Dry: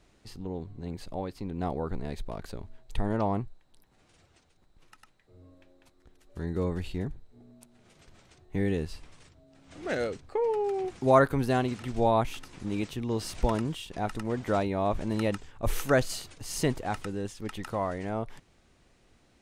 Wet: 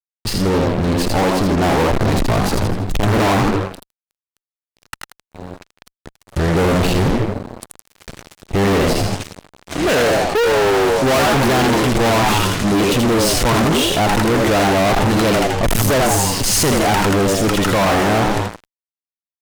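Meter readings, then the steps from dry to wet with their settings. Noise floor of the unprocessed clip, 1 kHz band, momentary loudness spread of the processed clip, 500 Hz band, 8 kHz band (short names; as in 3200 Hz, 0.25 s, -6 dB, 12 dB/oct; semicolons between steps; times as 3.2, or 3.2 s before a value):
-64 dBFS, +15.0 dB, 8 LU, +13.5 dB, +21.5 dB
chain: frequency-shifting echo 81 ms, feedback 42%, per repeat +89 Hz, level -5 dB; spectral repair 15.84–16.39, 1200–6000 Hz after; fuzz box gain 43 dB, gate -50 dBFS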